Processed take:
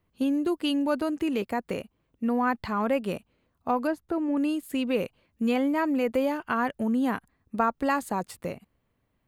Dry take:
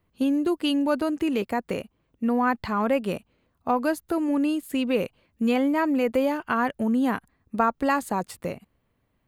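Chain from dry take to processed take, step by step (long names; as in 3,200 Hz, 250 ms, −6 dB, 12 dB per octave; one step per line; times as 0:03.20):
0:03.87–0:04.37: low-pass filter 1,700 Hz 6 dB per octave
level −2.5 dB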